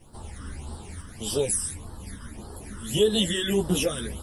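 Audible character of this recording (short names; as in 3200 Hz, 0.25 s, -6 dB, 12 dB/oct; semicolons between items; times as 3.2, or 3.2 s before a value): phasing stages 12, 1.7 Hz, lowest notch 730–2300 Hz; a quantiser's noise floor 12-bit, dither none; a shimmering, thickened sound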